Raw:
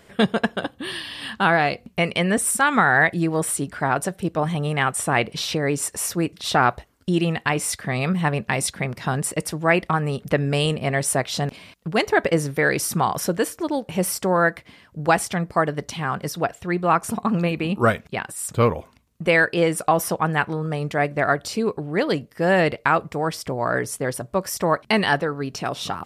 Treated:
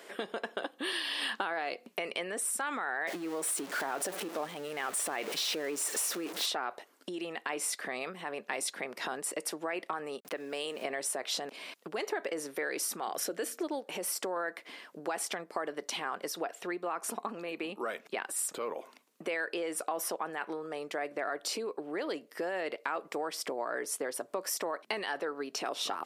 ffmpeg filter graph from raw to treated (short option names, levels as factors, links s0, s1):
-filter_complex "[0:a]asettb=1/sr,asplit=3[s0][s1][s2];[s0]atrim=end=3.074[s3];[s1]atrim=start=3.07:end=6.46,asetpts=PTS-STARTPTS,afade=t=in:d=0.004:c=qsin,afade=t=out:st=3.386:d=0.004:c=qsin,aeval=exprs='val(0)+0.5*0.0501*sgn(val(0))':c=same,lowshelf=f=77:g=9[s4];[s2]atrim=start=6.456[s5];[s3][s4]acrossfade=d=0.004:c1=hsin:c2=qsin[s6];[s6][s5]acrossfade=d=0.004:c1=qsin:c2=hsin,asettb=1/sr,asplit=3[s7][s8][s9];[s7]atrim=end=10.204[s10];[s8]atrim=start=10.2:end=10.85,asetpts=PTS-STARTPTS,afade=t=in:d=0.004:c=qsin,afade=t=out:st=0.646:d=0.004:c=qsin,lowshelf=f=120:g=-10,aeval=exprs='val(0)*gte(abs(val(0)),0.0075)':c=same,acompressor=threshold=0.0178:ratio=2.5:attack=3.2:release=140:knee=1:detection=peak[s11];[s9]atrim=start=10.846[s12];[s10][s11]acrossfade=d=0.004:c1=hsin:c2=qsin[s13];[s13][s12]acrossfade=d=0.004:c1=qsin:c2=hsin,asettb=1/sr,asplit=3[s14][s15][s16];[s14]atrim=end=13.014[s17];[s15]atrim=start=13.01:end=13.67,asetpts=PTS-STARTPTS,afade=t=in:d=0.004:c=qsin,afade=t=out:st=0.656:d=0.004:c=qsin,equalizer=f=990:t=o:w=0.31:g=-10,bandreject=f=60:t=h:w=6,bandreject=f=120:t=h:w=6,bandreject=f=180:t=h:w=6,bandreject=f=240:t=h:w=6[s18];[s16]atrim=start=13.666[s19];[s17][s18]acrossfade=d=0.004:c1=hsin:c2=qsin[s20];[s20][s19]acrossfade=d=0.004:c1=qsin:c2=hsin,alimiter=limit=0.178:level=0:latency=1:release=21,acompressor=threshold=0.0251:ratio=12,highpass=f=310:w=0.5412,highpass=f=310:w=1.3066,volume=1.26"